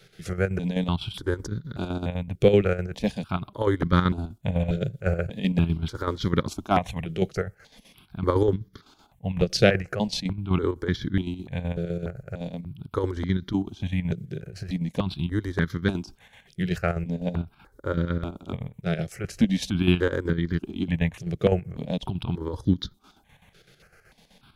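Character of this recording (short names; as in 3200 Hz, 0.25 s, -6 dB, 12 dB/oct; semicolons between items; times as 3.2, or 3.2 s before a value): chopped level 7.9 Hz, depth 60%, duty 60%; notches that jump at a steady rate 3.4 Hz 260–2600 Hz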